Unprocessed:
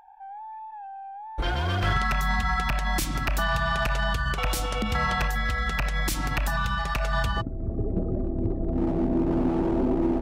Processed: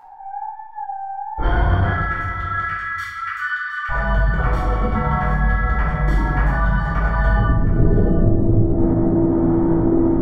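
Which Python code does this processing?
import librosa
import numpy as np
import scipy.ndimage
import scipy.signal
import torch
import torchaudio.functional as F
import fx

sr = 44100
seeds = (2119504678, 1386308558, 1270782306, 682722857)

y = fx.steep_highpass(x, sr, hz=1200.0, slope=96, at=(1.87, 3.89))
y = fx.rider(y, sr, range_db=5, speed_s=0.5)
y = scipy.signal.savgol_filter(y, 41, 4, mode='constant')
y = y + 10.0 ** (-15.0 / 20.0) * np.pad(y, (int(716 * sr / 1000.0), 0))[:len(y)]
y = fx.room_shoebox(y, sr, seeds[0], volume_m3=430.0, walls='mixed', distance_m=4.3)
y = y * librosa.db_to_amplitude(-3.0)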